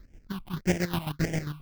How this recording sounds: aliases and images of a low sample rate 1300 Hz, jitter 20%; phasing stages 6, 1.7 Hz, lowest notch 460–1100 Hz; chopped level 7.5 Hz, depth 65%, duty 40%

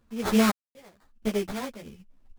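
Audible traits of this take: aliases and images of a low sample rate 2800 Hz, jitter 20%; random-step tremolo 4 Hz, depth 100%; a shimmering, thickened sound

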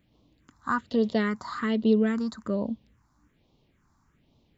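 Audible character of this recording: phasing stages 4, 1.2 Hz, lowest notch 470–1600 Hz

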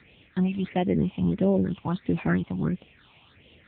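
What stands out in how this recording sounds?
a quantiser's noise floor 8-bit, dither triangular; phasing stages 6, 1.5 Hz, lowest notch 410–1400 Hz; AMR-NB

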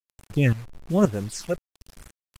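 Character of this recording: phasing stages 6, 1.1 Hz, lowest notch 230–4600 Hz; tremolo saw up 1.9 Hz, depth 80%; a quantiser's noise floor 8-bit, dither none; AAC

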